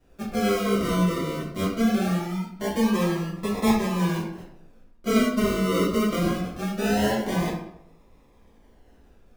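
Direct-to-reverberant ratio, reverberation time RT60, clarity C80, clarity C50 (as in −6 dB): −9.0 dB, 0.75 s, 6.5 dB, 3.5 dB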